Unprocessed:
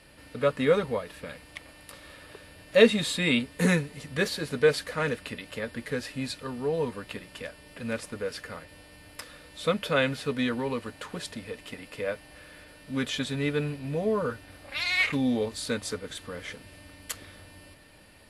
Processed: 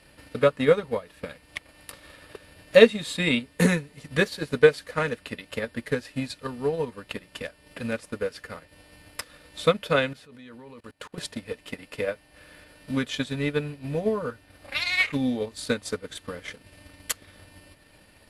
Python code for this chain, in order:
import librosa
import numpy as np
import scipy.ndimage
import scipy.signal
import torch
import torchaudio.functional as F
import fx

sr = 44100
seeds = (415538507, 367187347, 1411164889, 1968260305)

y = fx.level_steps(x, sr, step_db=22, at=(10.13, 11.18))
y = fx.transient(y, sr, attack_db=8, sustain_db=-6)
y = y * librosa.db_to_amplitude(-1.0)